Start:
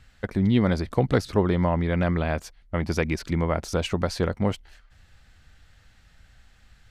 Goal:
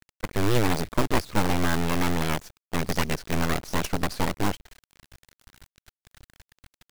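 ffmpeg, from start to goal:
ffmpeg -i in.wav -af "acrusher=bits=5:dc=4:mix=0:aa=0.000001,aeval=exprs='abs(val(0))':channel_layout=same" out.wav

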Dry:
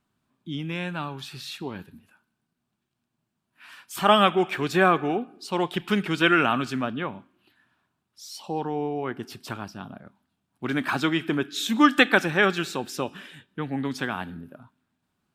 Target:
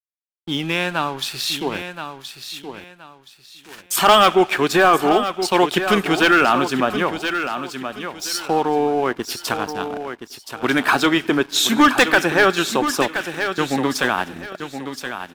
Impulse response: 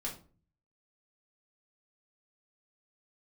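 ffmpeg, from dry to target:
-filter_complex "[0:a]agate=range=-33dB:threshold=-43dB:ratio=3:detection=peak,bass=frequency=250:gain=-11,treble=frequency=4000:gain=4,asplit=2[link_01][link_02];[link_02]acompressor=threshold=-34dB:ratio=6,volume=-2.5dB[link_03];[link_01][link_03]amix=inputs=2:normalize=0,volume=11.5dB,asoftclip=hard,volume=-11.5dB,apsyclip=15.5dB,aeval=exprs='sgn(val(0))*max(abs(val(0))-0.0335,0)':channel_layout=same,asplit=2[link_04][link_05];[link_05]aecho=0:1:1023|2046|3069:0.335|0.0871|0.0226[link_06];[link_04][link_06]amix=inputs=2:normalize=0,adynamicequalizer=threshold=0.0891:dfrequency=1700:dqfactor=0.7:tfrequency=1700:tqfactor=0.7:attack=5:release=100:ratio=0.375:range=2.5:mode=cutabove:tftype=highshelf,volume=-5.5dB"

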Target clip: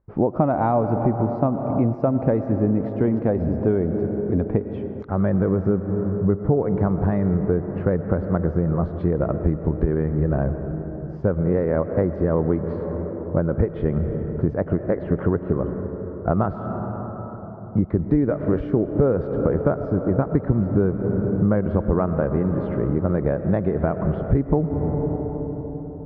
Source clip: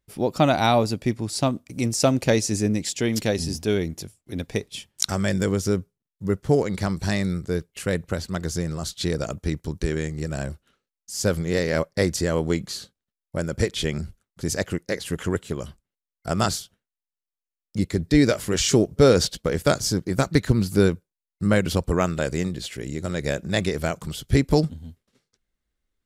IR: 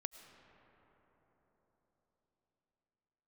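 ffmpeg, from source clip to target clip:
-filter_complex "[0:a]asplit=2[link_01][link_02];[1:a]atrim=start_sample=2205,highshelf=frequency=4300:gain=8[link_03];[link_02][link_03]afir=irnorm=-1:irlink=0,volume=11dB[link_04];[link_01][link_04]amix=inputs=2:normalize=0,acompressor=threshold=-16dB:ratio=6,lowpass=frequency=1200:width=0.5412,lowpass=frequency=1200:width=1.3066"

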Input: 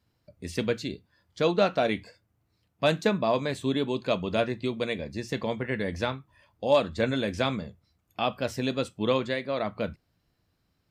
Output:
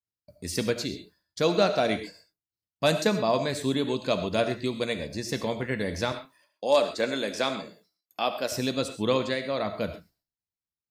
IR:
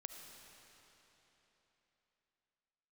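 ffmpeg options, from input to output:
-filter_complex "[0:a]aexciter=amount=3:drive=4.9:freq=4300,agate=range=-33dB:threshold=-52dB:ratio=3:detection=peak,asettb=1/sr,asplit=3[link_01][link_02][link_03];[link_01]atrim=end=6.124[link_04];[link_02]atrim=start=6.12:end=8.52,asetpts=PTS-STARTPTS,afade=type=in:duration=0.004:curve=qsin,afade=type=out:start_time=2.396:duration=0.004:curve=qsin,highpass=290[link_05];[link_03]atrim=start=8.516[link_06];[link_04][link_05]acrossfade=duration=0.004:curve1=hsin:curve2=qsin[link_07];[link_07][link_06]acrossfade=duration=0.004:curve1=qsin:curve2=hsin[link_08];[1:a]atrim=start_sample=2205,atrim=end_sample=6174[link_09];[link_08][link_09]afir=irnorm=-1:irlink=0,adynamicequalizer=threshold=0.00251:dfrequency=7000:dqfactor=0.7:tfrequency=7000:tqfactor=0.7:attack=5:release=100:ratio=0.375:range=2.5:mode=cutabove:tftype=highshelf,volume=6dB"

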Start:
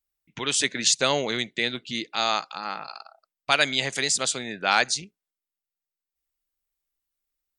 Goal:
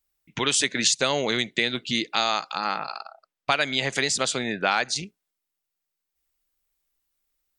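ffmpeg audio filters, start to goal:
ffmpeg -i in.wav -filter_complex "[0:a]asettb=1/sr,asplit=3[link_01][link_02][link_03];[link_01]atrim=end=2.774[link_04];[link_02]atrim=start=2.77:end=4.96,asetpts=PTS-STARTPTS,afade=type=in:duration=0.004:curve=qsin,afade=type=out:start_time=2.186:duration=0.004:curve=qsin,highshelf=frequency=5900:gain=-11[link_05];[link_03]atrim=start=4.956[link_06];[link_04][link_05]acrossfade=duration=0.004:curve1=hsin:curve2=qsin[link_07];[link_07][link_06]acrossfade=duration=0.004:curve1=qsin:curve2=hsin,acompressor=threshold=-26dB:ratio=4,volume=6.5dB" out.wav

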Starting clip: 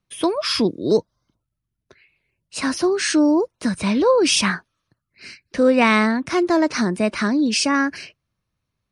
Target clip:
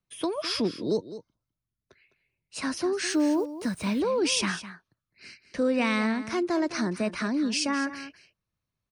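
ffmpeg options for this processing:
ffmpeg -i in.wav -filter_complex "[0:a]acrossover=split=330|2200[link_01][link_02][link_03];[link_02]alimiter=limit=-14.5dB:level=0:latency=1[link_04];[link_01][link_04][link_03]amix=inputs=3:normalize=0,asettb=1/sr,asplit=3[link_05][link_06][link_07];[link_05]atrim=end=3.084[link_08];[link_06]atrim=start=3.08:end=4,asetpts=PTS-STARTPTS,afade=type=in:duration=0.004:curve=qsin,afade=type=out:start_time=0.916:duration=0.004:curve=qsin,acrusher=bits=6:mix=0:aa=0.5[link_09];[link_07]atrim=start=3.996[link_10];[link_08][link_09]acrossfade=duration=0.004:curve1=hsin:curve2=qsin[link_11];[link_11][link_10]acrossfade=duration=0.004:curve1=qsin:curve2=hsin,aecho=1:1:207:0.211,volume=-8dB" out.wav

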